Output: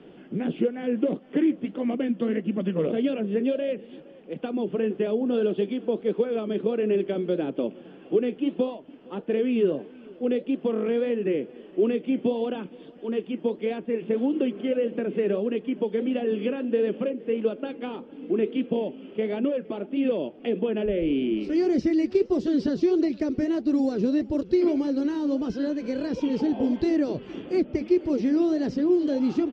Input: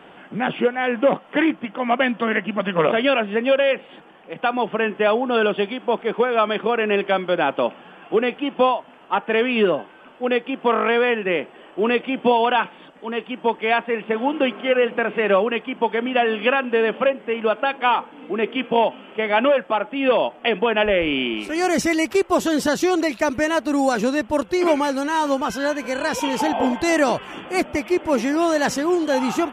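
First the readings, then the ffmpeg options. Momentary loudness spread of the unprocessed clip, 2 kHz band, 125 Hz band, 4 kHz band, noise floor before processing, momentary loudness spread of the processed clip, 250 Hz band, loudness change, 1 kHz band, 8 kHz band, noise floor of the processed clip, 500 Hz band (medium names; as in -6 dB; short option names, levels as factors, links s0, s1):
6 LU, -19.0 dB, -1.0 dB, -15.5 dB, -46 dBFS, 8 LU, -0.5 dB, -5.5 dB, -20.0 dB, under -20 dB, -48 dBFS, -5.5 dB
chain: -filter_complex "[0:a]lowpass=f=4800:t=q:w=3.8,acrossover=split=510|3800[s0][s1][s2];[s0]acompressor=threshold=0.0708:ratio=4[s3];[s1]acompressor=threshold=0.0447:ratio=4[s4];[s2]acompressor=threshold=0.00708:ratio=4[s5];[s3][s4][s5]amix=inputs=3:normalize=0,lowshelf=f=590:t=q:w=1.5:g=13,flanger=delay=0.8:depth=8.2:regen=-70:speed=1.6:shape=triangular,aecho=1:1:465:0.0668,volume=0.355"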